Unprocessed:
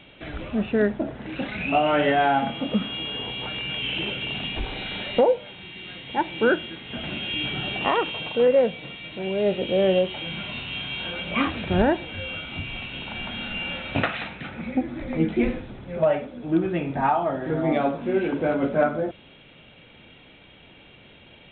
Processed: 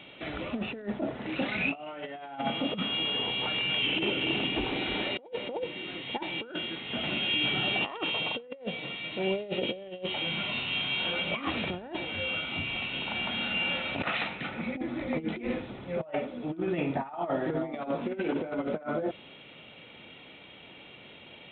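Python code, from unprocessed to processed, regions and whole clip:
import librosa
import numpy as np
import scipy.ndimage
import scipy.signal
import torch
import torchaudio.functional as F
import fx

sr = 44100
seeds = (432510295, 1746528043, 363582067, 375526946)

y = fx.chain(x, sr, fx.lowpass(hz=3300.0, slope=6),
    fx.peak_eq(hz=320.0, db=8.5, octaves=0.6),
    fx.echo_single(ms=305, db=-8.0), at=(3.86, 6.02))
y = fx.highpass(y, sr, hz=220.0, slope=6)
y = fx.notch(y, sr, hz=1600.0, q=12.0)
y = fx.over_compress(y, sr, threshold_db=-28.0, ratio=-0.5)
y = y * 10.0 ** (-2.5 / 20.0)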